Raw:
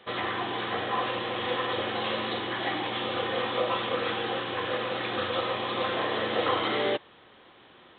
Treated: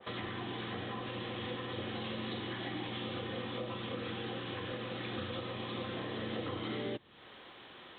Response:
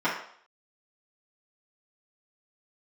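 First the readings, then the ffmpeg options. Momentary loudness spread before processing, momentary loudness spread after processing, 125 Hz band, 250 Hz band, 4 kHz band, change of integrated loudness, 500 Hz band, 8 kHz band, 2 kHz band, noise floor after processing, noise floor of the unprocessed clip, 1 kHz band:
4 LU, 2 LU, -0.5 dB, -4.5 dB, -10.5 dB, -10.5 dB, -11.5 dB, no reading, -12.0 dB, -54 dBFS, -55 dBFS, -14.5 dB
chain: -filter_complex "[0:a]acrossover=split=290[s0][s1];[s1]acompressor=threshold=0.00708:ratio=10[s2];[s0][s2]amix=inputs=2:normalize=0,adynamicequalizer=threshold=0.00126:dfrequency=1700:dqfactor=0.7:tfrequency=1700:tqfactor=0.7:attack=5:release=100:ratio=0.375:range=2.5:mode=boostabove:tftype=highshelf"

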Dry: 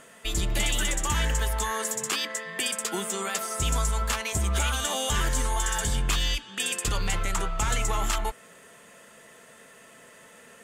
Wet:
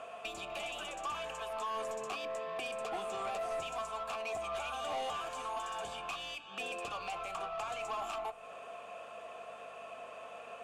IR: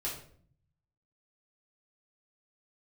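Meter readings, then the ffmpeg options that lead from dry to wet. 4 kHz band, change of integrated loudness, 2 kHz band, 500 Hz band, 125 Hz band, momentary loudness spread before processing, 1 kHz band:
-14.0 dB, -12.5 dB, -11.5 dB, -3.0 dB, -29.5 dB, 3 LU, -5.5 dB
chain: -filter_complex "[0:a]acrossover=split=640|7200[s0][s1][s2];[s0]acompressor=threshold=0.01:ratio=4[s3];[s1]acompressor=threshold=0.00794:ratio=4[s4];[s2]acompressor=threshold=0.00794:ratio=4[s5];[s3][s4][s5]amix=inputs=3:normalize=0,aeval=exprs='val(0)+0.00126*(sin(2*PI*50*n/s)+sin(2*PI*2*50*n/s)/2+sin(2*PI*3*50*n/s)/3+sin(2*PI*4*50*n/s)/4+sin(2*PI*5*50*n/s)/5)':c=same,asplit=3[s6][s7][s8];[s6]bandpass=f=730:t=q:w=8,volume=1[s9];[s7]bandpass=f=1090:t=q:w=8,volume=0.501[s10];[s8]bandpass=f=2440:t=q:w=8,volume=0.355[s11];[s9][s10][s11]amix=inputs=3:normalize=0,aeval=exprs='(tanh(282*val(0)+0.05)-tanh(0.05))/282':c=same,asplit=2[s12][s13];[1:a]atrim=start_sample=2205[s14];[s13][s14]afir=irnorm=-1:irlink=0,volume=0.141[s15];[s12][s15]amix=inputs=2:normalize=0,volume=5.96"

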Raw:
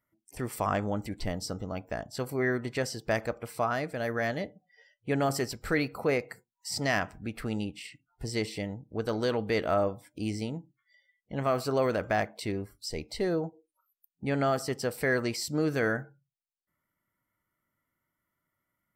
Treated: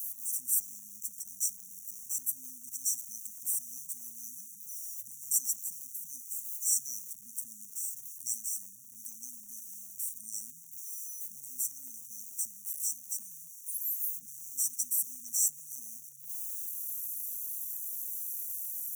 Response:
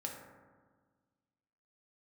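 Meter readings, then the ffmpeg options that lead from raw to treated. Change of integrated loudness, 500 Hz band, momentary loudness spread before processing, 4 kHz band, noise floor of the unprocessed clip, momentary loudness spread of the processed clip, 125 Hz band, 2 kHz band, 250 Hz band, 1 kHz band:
-3.0 dB, under -40 dB, 10 LU, -8.5 dB, -85 dBFS, 14 LU, under -30 dB, under -40 dB, -32.0 dB, under -40 dB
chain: -filter_complex "[0:a]aeval=exprs='val(0)+0.5*0.0119*sgn(val(0))':c=same,acrossover=split=340|2400[s0][s1][s2];[s0]acompressor=threshold=0.00631:ratio=12[s3];[s3][s1][s2]amix=inputs=3:normalize=0,afftfilt=real='re*(1-between(b*sr/4096,260,5600))':imag='im*(1-between(b*sr/4096,260,5600))':win_size=4096:overlap=0.75,aderivative,volume=2.82"

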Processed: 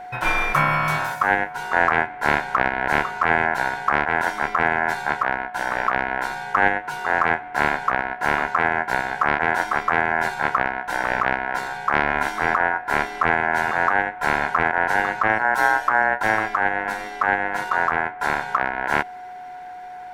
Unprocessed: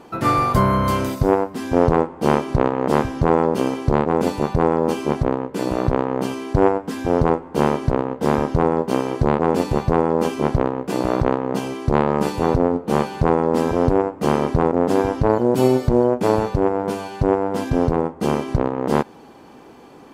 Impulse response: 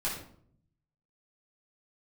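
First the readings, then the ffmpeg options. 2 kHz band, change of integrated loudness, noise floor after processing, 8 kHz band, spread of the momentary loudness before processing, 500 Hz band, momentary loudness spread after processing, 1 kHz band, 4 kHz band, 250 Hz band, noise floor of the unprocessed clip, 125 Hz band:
+14.0 dB, -1.5 dB, -36 dBFS, -2.5 dB, 5 LU, -9.5 dB, 5 LU, +2.5 dB, +0.5 dB, -13.5 dB, -43 dBFS, -13.0 dB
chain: -af "aeval=exprs='val(0)*sin(2*PI*1200*n/s)':c=same,aeval=exprs='val(0)+0.02*sin(2*PI*730*n/s)':c=same"

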